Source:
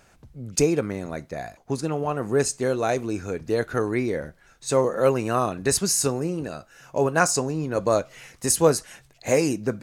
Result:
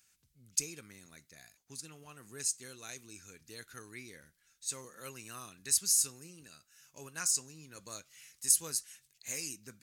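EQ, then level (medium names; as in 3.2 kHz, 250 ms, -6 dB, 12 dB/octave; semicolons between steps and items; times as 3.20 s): tilt EQ +3.5 dB/octave; amplifier tone stack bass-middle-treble 6-0-2; 0.0 dB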